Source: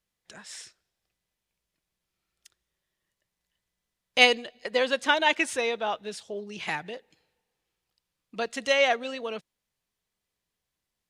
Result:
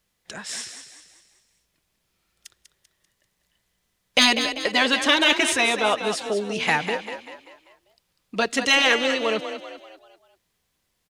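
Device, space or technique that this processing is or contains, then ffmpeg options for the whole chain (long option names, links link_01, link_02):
parallel distortion: -filter_complex "[0:a]afftfilt=real='re*lt(hypot(re,im),0.355)':imag='im*lt(hypot(re,im),0.355)':win_size=1024:overlap=0.75,asplit=2[link_01][link_02];[link_02]asoftclip=type=hard:threshold=-26dB,volume=-8.5dB[link_03];[link_01][link_03]amix=inputs=2:normalize=0,asplit=6[link_04][link_05][link_06][link_07][link_08][link_09];[link_05]adelay=195,afreqshift=34,volume=-9dB[link_10];[link_06]adelay=390,afreqshift=68,volume=-15.9dB[link_11];[link_07]adelay=585,afreqshift=102,volume=-22.9dB[link_12];[link_08]adelay=780,afreqshift=136,volume=-29.8dB[link_13];[link_09]adelay=975,afreqshift=170,volume=-36.7dB[link_14];[link_04][link_10][link_11][link_12][link_13][link_14]amix=inputs=6:normalize=0,volume=7.5dB"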